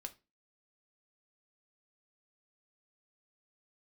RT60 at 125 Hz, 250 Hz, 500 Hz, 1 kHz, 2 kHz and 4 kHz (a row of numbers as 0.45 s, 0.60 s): 0.30 s, 0.35 s, 0.30 s, 0.25 s, 0.25 s, 0.25 s